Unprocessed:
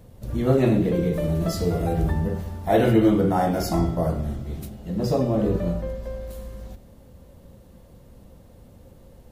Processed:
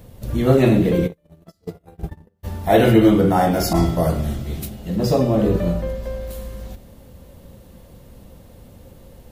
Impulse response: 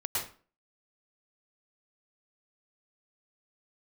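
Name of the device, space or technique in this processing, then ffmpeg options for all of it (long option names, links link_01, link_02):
presence and air boost: -filter_complex "[0:a]asplit=3[link_01][link_02][link_03];[link_01]afade=type=out:start_time=1.06:duration=0.02[link_04];[link_02]agate=range=-45dB:threshold=-18dB:ratio=16:detection=peak,afade=type=in:start_time=1.06:duration=0.02,afade=type=out:start_time=2.43:duration=0.02[link_05];[link_03]afade=type=in:start_time=2.43:duration=0.02[link_06];[link_04][link_05][link_06]amix=inputs=3:normalize=0,equalizer=frequency=2900:width_type=o:width=1.6:gain=3.5,highshelf=frequency=11000:gain=7,asettb=1/sr,asplit=3[link_07][link_08][link_09];[link_07]atrim=end=3.734[link_10];[link_08]atrim=start=3.73:end=4.96,asetpts=PTS-STARTPTS,afade=type=in:duration=0.004:curve=qsin,afade=type=out:start_time=1.226:duration=0.004:curve=qsin,adynamicequalizer=threshold=0.00631:dfrequency=1900:dqfactor=0.7:tfrequency=1900:tqfactor=0.7:attack=5:release=100:ratio=0.375:range=2.5:mode=boostabove:tftype=highshelf[link_11];[link_09]atrim=start=4.956[link_12];[link_10][link_11]acrossfade=duration=0.004:curve1=hsin:curve2=qsin[link_13];[link_13][link_12]acrossfade=duration=0.004:curve1=qsin:curve2=hsin,volume=4.5dB"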